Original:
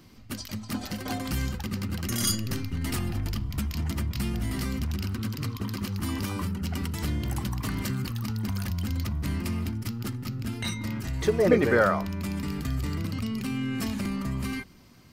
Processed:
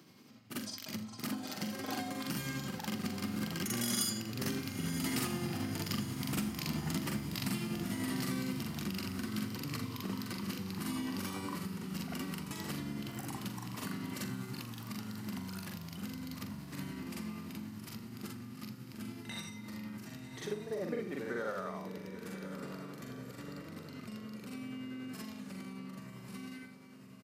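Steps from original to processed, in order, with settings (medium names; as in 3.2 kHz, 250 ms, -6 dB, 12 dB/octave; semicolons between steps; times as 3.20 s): Doppler pass-by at 3.18 s, 8 m/s, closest 9 m; high-pass 140 Hz 24 dB/octave; compression 2.5:1, threshold -42 dBFS, peak gain reduction 12 dB; echo that smears into a reverb 603 ms, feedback 56%, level -10 dB; granular stretch 1.8×, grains 191 ms; on a send: delay 81 ms -17.5 dB; on the sum: trim +6.5 dB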